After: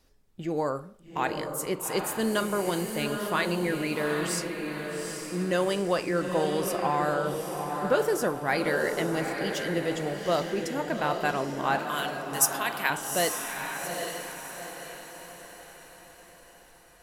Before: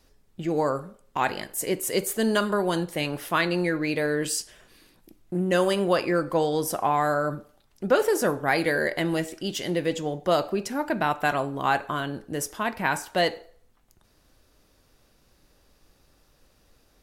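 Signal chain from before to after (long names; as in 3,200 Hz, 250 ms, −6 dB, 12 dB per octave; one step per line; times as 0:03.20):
0:11.79–0:12.90: spectral tilt +4.5 dB per octave
on a send: feedback delay with all-pass diffusion 818 ms, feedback 47%, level −5 dB
on the sum: level −4 dB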